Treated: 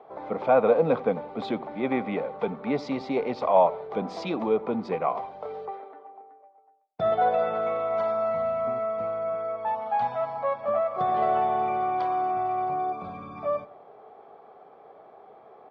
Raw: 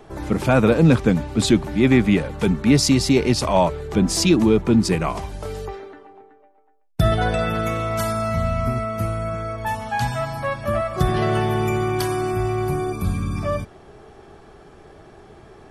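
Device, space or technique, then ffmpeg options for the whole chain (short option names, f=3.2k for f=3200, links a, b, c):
phone earpiece: -filter_complex "[0:a]highpass=330,equalizer=f=340:t=q:w=4:g=-8,equalizer=f=500:t=q:w=4:g=8,equalizer=f=740:t=q:w=4:g=9,equalizer=f=1.1k:t=q:w=4:g=4,equalizer=f=1.7k:t=q:w=4:g=-9,equalizer=f=2.8k:t=q:w=4:g=-10,lowpass=f=3k:w=0.5412,lowpass=f=3k:w=1.3066,asettb=1/sr,asplit=3[a][b][c];[a]atrim=end=3.724[d];[b]atrim=start=3.72:end=4.49,asetpts=PTS-STARTPTS,afade=t=in:d=0.004:c=qsin,afade=t=out:st=0.766:d=0.004:c=qsin,highshelf=f=4.8k:g=5.5[e];[c]atrim=start=4.486[f];[d][e]acrossfade=d=0.004:c1=hsin:c2=qsin[g];[g][f]acrossfade=d=0.004:c1=qsin:c2=hsin,asplit=2[h][i];[i]adelay=88,lowpass=f=1.3k:p=1,volume=-18dB,asplit=2[j][k];[k]adelay=88,lowpass=f=1.3k:p=1,volume=0.48,asplit=2[l][m];[m]adelay=88,lowpass=f=1.3k:p=1,volume=0.48,asplit=2[n][o];[o]adelay=88,lowpass=f=1.3k:p=1,volume=0.48[p];[h][j][l][n][p]amix=inputs=5:normalize=0,volume=-6dB"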